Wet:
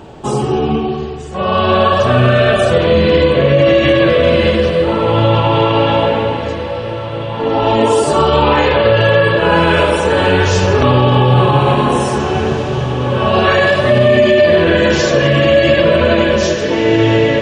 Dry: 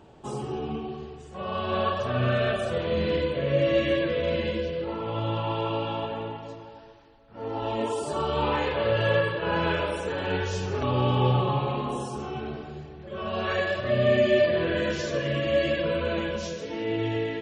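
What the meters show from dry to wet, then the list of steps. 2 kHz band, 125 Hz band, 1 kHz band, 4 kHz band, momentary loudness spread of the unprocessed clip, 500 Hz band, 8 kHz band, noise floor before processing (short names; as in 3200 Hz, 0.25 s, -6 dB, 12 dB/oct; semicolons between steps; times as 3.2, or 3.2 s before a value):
+15.5 dB, +15.0 dB, +16.0 dB, +15.5 dB, 12 LU, +15.0 dB, +17.0 dB, -45 dBFS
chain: on a send: diffused feedback echo 1.964 s, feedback 42%, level -11.5 dB; on the sum: maximiser +18 dB; gain -1 dB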